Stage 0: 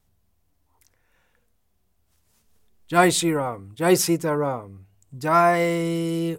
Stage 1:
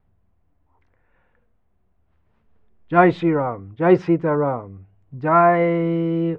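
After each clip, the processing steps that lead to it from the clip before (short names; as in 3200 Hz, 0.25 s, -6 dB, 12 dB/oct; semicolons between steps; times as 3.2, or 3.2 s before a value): Bessel low-pass 1600 Hz, order 4; gain +4 dB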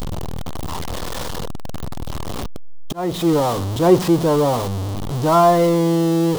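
zero-crossing step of -18 dBFS; auto swell 0.388 s; band shelf 1900 Hz -8.5 dB 1.1 oct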